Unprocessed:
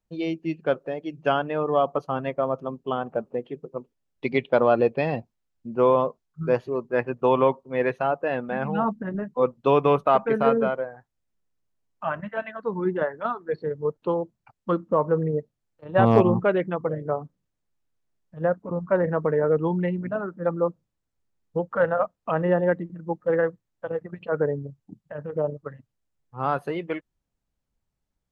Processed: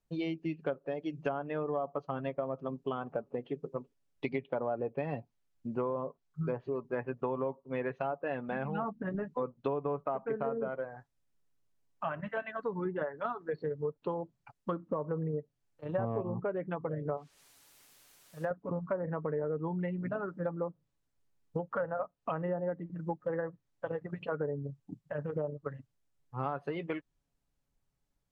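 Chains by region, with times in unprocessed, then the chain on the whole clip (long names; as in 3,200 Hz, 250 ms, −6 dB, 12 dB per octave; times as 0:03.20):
0:17.17–0:18.51: low-shelf EQ 390 Hz −11.5 dB + bit-depth reduction 10 bits, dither triangular
whole clip: treble cut that deepens with the level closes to 1,200 Hz, closed at −17 dBFS; comb filter 7.1 ms, depth 33%; downward compressor 5 to 1, threshold −31 dBFS; level −1 dB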